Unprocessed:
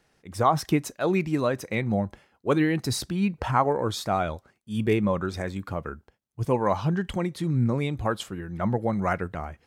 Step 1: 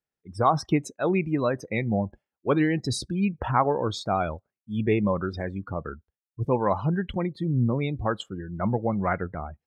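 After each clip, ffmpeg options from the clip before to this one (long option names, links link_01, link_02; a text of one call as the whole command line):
ffmpeg -i in.wav -af "afftdn=noise_reduction=27:noise_floor=-37" out.wav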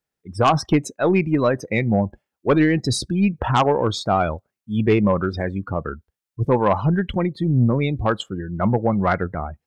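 ffmpeg -i in.wav -af "aeval=exprs='0.422*(cos(1*acos(clip(val(0)/0.422,-1,1)))-cos(1*PI/2))+0.15*(cos(5*acos(clip(val(0)/0.422,-1,1)))-cos(5*PI/2))+0.0119*(cos(6*acos(clip(val(0)/0.422,-1,1)))-cos(6*PI/2))+0.0531*(cos(7*acos(clip(val(0)/0.422,-1,1)))-cos(7*PI/2))':channel_layout=same,volume=1dB" out.wav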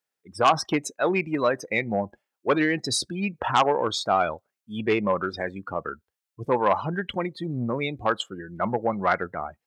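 ffmpeg -i in.wav -af "highpass=frequency=640:poles=1" out.wav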